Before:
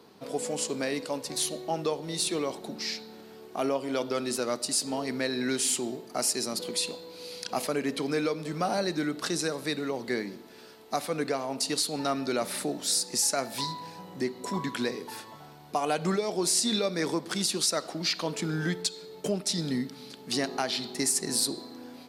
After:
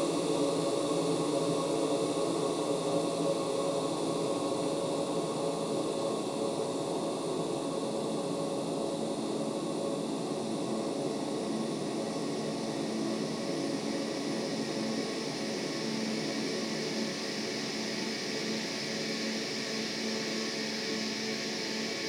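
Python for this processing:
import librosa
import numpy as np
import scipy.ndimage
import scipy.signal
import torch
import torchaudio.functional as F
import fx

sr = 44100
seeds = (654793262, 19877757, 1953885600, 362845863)

p1 = fx.wiener(x, sr, points=15)
p2 = fx.over_compress(p1, sr, threshold_db=-32.0, ratio=-1.0)
p3 = fx.high_shelf(p2, sr, hz=7500.0, db=-8.0)
p4 = p3 + fx.echo_heads(p3, sr, ms=90, heads='first and second', feedback_pct=67, wet_db=-12.0, dry=0)
p5 = fx.paulstretch(p4, sr, seeds[0], factor=48.0, window_s=0.5, from_s=2.45)
y = p5 * librosa.db_to_amplitude(2.0)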